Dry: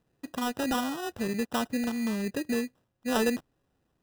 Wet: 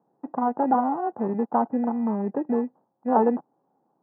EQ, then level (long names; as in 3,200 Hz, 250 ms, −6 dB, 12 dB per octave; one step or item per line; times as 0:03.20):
high-pass filter 180 Hz 24 dB per octave
low-pass filter 1,100 Hz 24 dB per octave
parametric band 840 Hz +12.5 dB 0.39 octaves
+5.0 dB